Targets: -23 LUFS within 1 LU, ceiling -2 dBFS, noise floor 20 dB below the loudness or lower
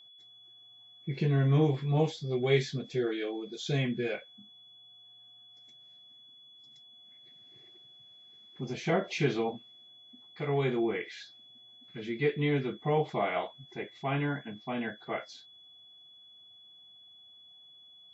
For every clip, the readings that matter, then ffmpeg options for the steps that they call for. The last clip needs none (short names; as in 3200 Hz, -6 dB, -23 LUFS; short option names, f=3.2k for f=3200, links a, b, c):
steady tone 3400 Hz; tone level -53 dBFS; loudness -31.5 LUFS; peak -13.5 dBFS; loudness target -23.0 LUFS
-> -af "bandreject=f=3.4k:w=30"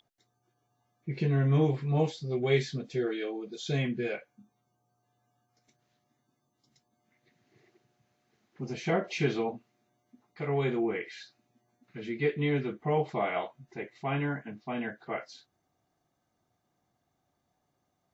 steady tone none; loudness -31.5 LUFS; peak -13.5 dBFS; loudness target -23.0 LUFS
-> -af "volume=8.5dB"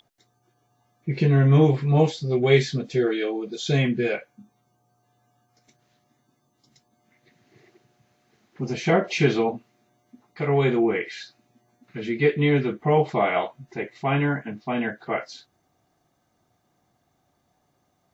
loudness -23.0 LUFS; peak -5.0 dBFS; noise floor -70 dBFS